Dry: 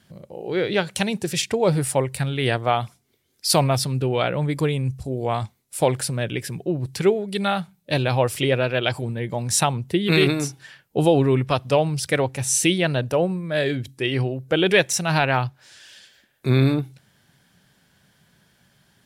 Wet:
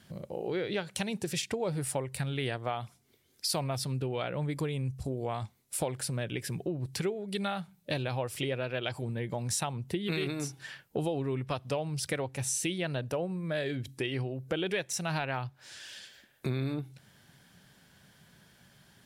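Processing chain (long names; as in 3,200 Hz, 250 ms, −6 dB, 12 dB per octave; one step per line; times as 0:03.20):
downward compressor 4 to 1, threshold −32 dBFS, peak gain reduction 17 dB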